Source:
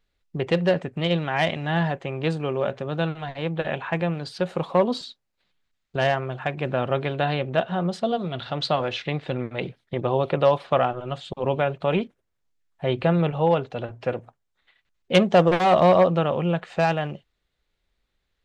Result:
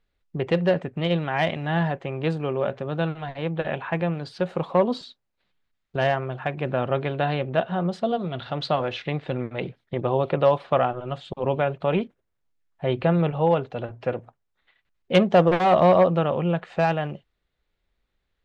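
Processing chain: treble shelf 4.6 kHz -10 dB

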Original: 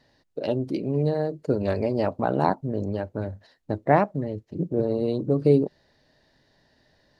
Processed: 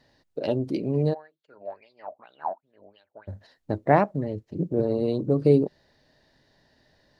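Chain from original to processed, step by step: 1.13–3.27 s: wah-wah 1.6 Hz -> 3.7 Hz 630–3800 Hz, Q 9.5

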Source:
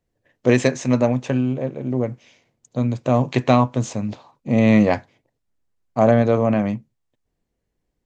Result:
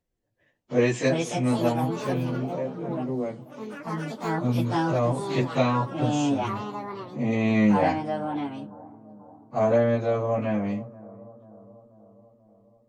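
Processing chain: ever faster or slower copies 345 ms, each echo +5 st, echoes 3, each echo -6 dB; plain phase-vocoder stretch 1.6×; bucket-brigade echo 486 ms, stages 4096, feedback 59%, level -20 dB; trim -3.5 dB

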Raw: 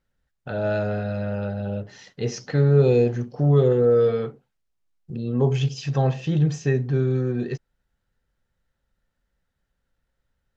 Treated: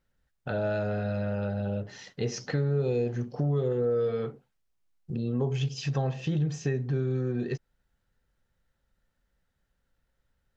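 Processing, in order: compression 3:1, threshold -27 dBFS, peak gain reduction 12 dB

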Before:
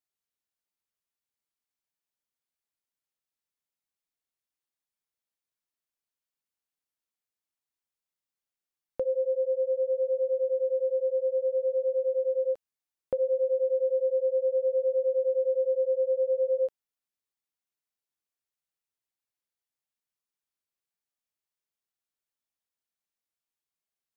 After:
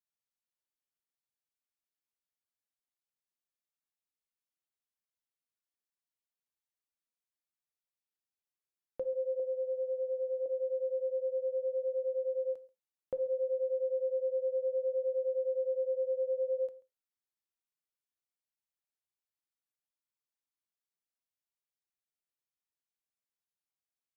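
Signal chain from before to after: 9.39–10.46 s: comb 6.4 ms, depth 77%; on a send: delay 135 ms -21.5 dB; on the sum: gated-style reverb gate 130 ms falling, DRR 11.5 dB; trim -8 dB

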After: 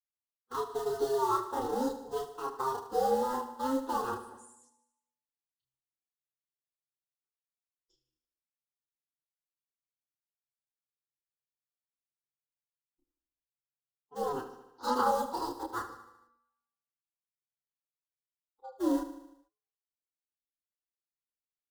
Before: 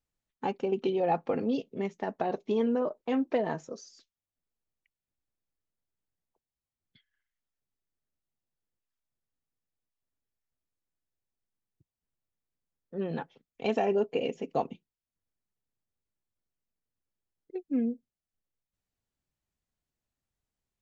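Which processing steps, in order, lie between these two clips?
gliding tape speed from 142% -> 184%; gate with hold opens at -57 dBFS; de-hum 184.3 Hz, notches 22; harmonic-percussive split percussive -3 dB; dynamic bell 560 Hz, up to +4 dB, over -40 dBFS, Q 1.7; ring modulator 130 Hz; in parallel at -9 dB: bit crusher 5-bit; on the sum: static phaser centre 630 Hz, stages 6; time stretch by phase-locked vocoder 1.7×; chorus voices 4, 0.76 Hz, delay 30 ms, depth 2.2 ms; on a send: feedback delay 75 ms, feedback 57%, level -12 dB; on the sum: trim +3.5 dB

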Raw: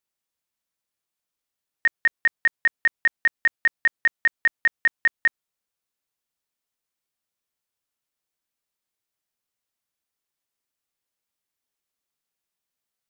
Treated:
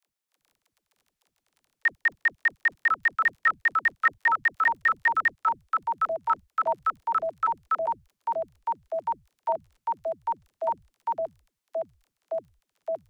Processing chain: bass shelf 110 Hz -7.5 dB; crackle 13 per s -43 dBFS; phase dispersion lows, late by 77 ms, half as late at 320 Hz; ever faster or slower copies 284 ms, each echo -6 st, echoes 3; trim -3 dB

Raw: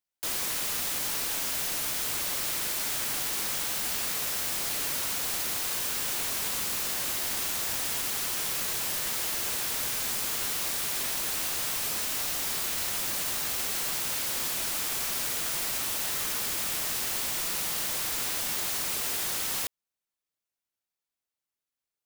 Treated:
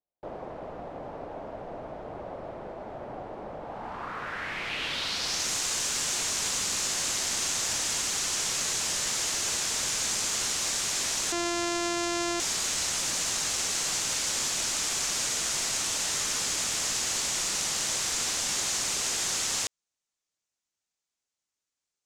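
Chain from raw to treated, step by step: 11.32–12.40 s: sorted samples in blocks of 128 samples; low-pass sweep 660 Hz -> 6.9 kHz, 3.61–5.51 s; trim +1 dB

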